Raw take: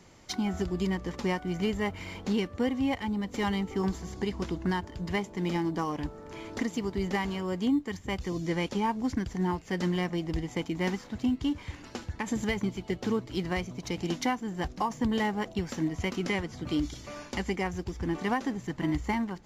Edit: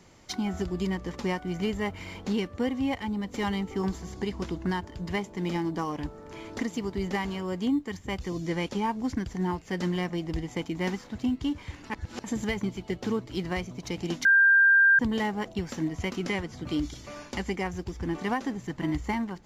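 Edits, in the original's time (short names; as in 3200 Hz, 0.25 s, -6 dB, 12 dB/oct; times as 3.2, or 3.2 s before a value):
11.9–12.24 reverse
14.25–14.99 bleep 1590 Hz -15.5 dBFS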